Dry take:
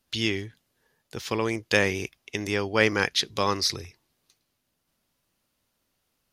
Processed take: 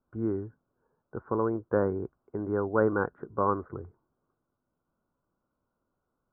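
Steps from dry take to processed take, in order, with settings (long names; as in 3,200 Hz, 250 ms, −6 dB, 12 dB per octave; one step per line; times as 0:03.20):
Chebyshev low-pass with heavy ripple 1,500 Hz, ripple 3 dB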